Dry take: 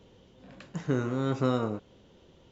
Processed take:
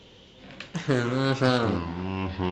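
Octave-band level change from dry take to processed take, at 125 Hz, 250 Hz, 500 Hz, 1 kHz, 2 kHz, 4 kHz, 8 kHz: +5.0 dB, +4.5 dB, +4.5 dB, +7.0 dB, +12.0 dB, +13.0 dB, n/a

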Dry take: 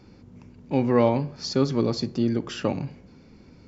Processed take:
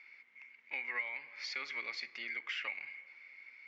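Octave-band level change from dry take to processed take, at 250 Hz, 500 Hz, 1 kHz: -40.0, -32.0, -19.0 dB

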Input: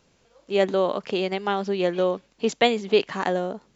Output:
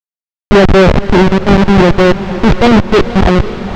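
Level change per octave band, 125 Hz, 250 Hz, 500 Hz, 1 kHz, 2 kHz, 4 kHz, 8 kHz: +25.5 dB, +20.0 dB, +12.5 dB, +14.0 dB, +15.5 dB, +10.5 dB, n/a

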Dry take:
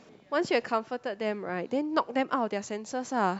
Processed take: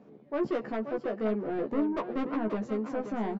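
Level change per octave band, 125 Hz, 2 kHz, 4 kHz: +1.0 dB, -9.0 dB, under -10 dB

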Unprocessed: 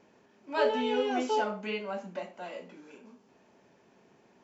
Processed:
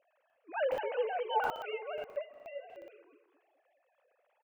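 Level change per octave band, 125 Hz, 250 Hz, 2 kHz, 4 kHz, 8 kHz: under -10 dB, -22.0 dB, -3.0 dB, -8.0 dB, n/a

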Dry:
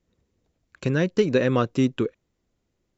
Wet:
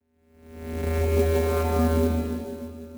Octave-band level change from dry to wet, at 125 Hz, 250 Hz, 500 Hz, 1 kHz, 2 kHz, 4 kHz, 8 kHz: +2.5 dB, -3.0 dB, -0.5 dB, +2.0 dB, -5.0 dB, -4.5 dB, n/a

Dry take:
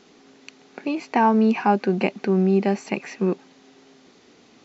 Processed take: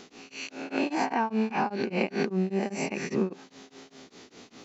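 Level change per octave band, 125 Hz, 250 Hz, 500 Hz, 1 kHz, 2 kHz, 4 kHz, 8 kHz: -8.5 dB, -8.0 dB, -7.5 dB, -7.5 dB, -3.0 dB, -0.5 dB, n/a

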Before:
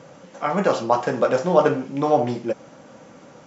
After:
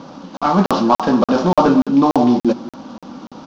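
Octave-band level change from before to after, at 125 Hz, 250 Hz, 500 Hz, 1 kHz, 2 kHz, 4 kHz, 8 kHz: +6.0 dB, +12.5 dB, +1.0 dB, +6.0 dB, +1.5 dB, +8.0 dB, n/a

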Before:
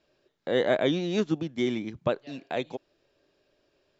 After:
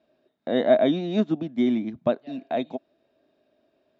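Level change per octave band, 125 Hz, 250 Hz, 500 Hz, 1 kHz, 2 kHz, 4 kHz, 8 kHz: 0.0 dB, +5.5 dB, +4.0 dB, +4.5 dB, -3.0 dB, -1.5 dB, n/a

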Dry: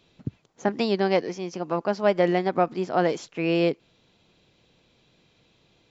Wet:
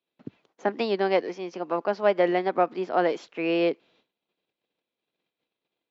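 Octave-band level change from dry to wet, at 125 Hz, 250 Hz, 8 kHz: -9.5 dB, -3.0 dB, n/a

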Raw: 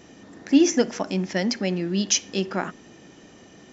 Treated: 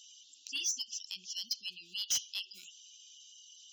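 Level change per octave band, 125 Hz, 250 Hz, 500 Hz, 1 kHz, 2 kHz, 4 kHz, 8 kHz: under -40 dB, under -40 dB, under -40 dB, under -30 dB, -14.5 dB, -5.5 dB, n/a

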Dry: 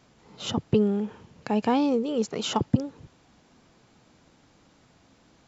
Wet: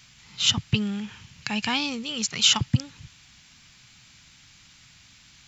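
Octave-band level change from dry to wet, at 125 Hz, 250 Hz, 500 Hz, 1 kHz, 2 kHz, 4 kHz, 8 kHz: +3.0 dB, -5.0 dB, -14.5 dB, -4.0 dB, +11.0 dB, +13.5 dB, n/a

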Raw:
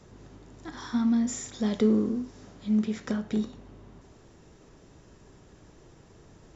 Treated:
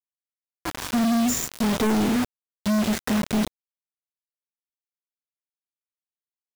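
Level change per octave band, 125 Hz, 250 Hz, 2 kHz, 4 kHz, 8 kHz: +4.5 dB, +3.5 dB, +12.0 dB, +12.0 dB, n/a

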